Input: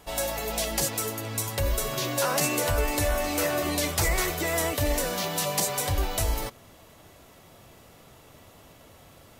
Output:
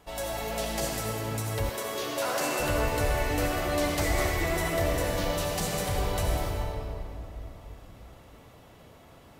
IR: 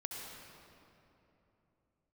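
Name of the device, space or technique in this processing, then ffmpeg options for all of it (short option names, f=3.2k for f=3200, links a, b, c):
swimming-pool hall: -filter_complex "[1:a]atrim=start_sample=2205[a];[0:a][a]afir=irnorm=-1:irlink=0,highshelf=f=4.3k:g=-6.5,asettb=1/sr,asplit=3[b][c][d];[b]atrim=end=1.694[e];[c]atrim=start=1.69:end=2.6,asetpts=PTS-STARTPTS,afade=t=in:d=0.004:c=qsin,afade=t=out:st=0.906:d=0.004:c=qsin,highpass=270[f];[d]atrim=start=2.596[g];[e][f]acrossfade=d=0.004:c1=hsin:c2=qsin[h];[h][g]acrossfade=d=0.004:c1=qsin:c2=hsin"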